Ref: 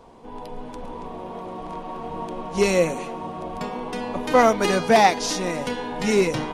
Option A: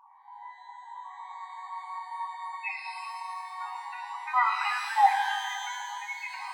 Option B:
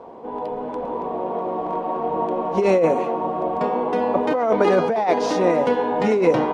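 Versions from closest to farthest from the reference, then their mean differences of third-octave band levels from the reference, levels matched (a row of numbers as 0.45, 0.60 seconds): B, A; 6.0, 17.5 decibels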